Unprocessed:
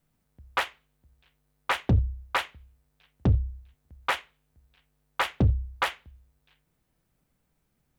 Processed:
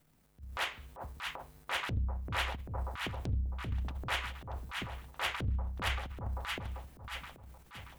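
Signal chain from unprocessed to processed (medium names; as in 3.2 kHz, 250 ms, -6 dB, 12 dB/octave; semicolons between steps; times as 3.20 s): two-band feedback delay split 900 Hz, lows 391 ms, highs 630 ms, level -14.5 dB; compression 10:1, threshold -35 dBFS, peak gain reduction 17.5 dB; transient shaper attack -11 dB, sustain +11 dB; trim +4.5 dB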